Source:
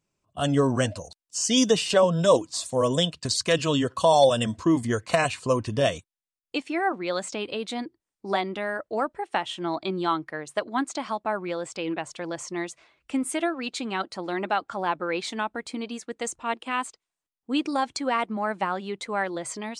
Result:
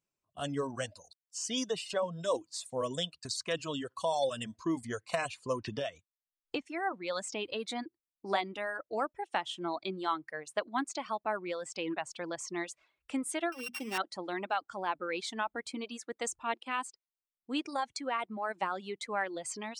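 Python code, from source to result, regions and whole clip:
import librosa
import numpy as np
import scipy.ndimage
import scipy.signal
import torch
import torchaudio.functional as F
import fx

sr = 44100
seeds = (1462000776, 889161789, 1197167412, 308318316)

y = fx.chain(x, sr, fx.air_absorb(metres=97.0),
    fx.band_squash(depth_pct=100), at=(5.64, 6.66))
y = fx.chain(y, sr, fx.sample_sort(block=16),
    fx.high_shelf(hz=6600.0, db=-5.0),
    fx.hum_notches(base_hz=60, count=6), at=(13.52, 13.98))
y = fx.dereverb_blind(y, sr, rt60_s=1.0)
y = fx.low_shelf(y, sr, hz=280.0, db=-5.5)
y = fx.rider(y, sr, range_db=4, speed_s=0.5)
y = y * librosa.db_to_amplitude(-7.5)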